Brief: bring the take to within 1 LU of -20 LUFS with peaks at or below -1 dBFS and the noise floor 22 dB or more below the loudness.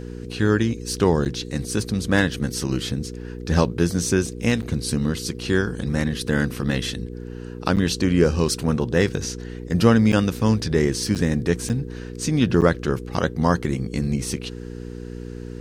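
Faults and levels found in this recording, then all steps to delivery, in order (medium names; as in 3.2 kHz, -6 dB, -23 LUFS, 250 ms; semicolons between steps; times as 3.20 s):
dropouts 7; longest dropout 8.5 ms; hum 60 Hz; highest harmonic 480 Hz; hum level -31 dBFS; loudness -22.5 LUFS; peak level -2.5 dBFS; loudness target -20.0 LUFS
-> interpolate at 1.25/4.62/7.76/10.12/11.15/11.69/12.61 s, 8.5 ms; de-hum 60 Hz, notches 8; trim +2.5 dB; peak limiter -1 dBFS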